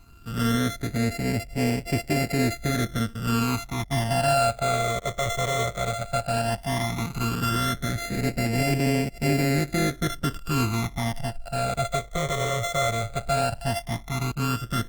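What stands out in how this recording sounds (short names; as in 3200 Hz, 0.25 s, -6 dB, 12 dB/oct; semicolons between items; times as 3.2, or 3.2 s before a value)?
a buzz of ramps at a fixed pitch in blocks of 64 samples; phasing stages 12, 0.14 Hz, lowest notch 270–1200 Hz; Opus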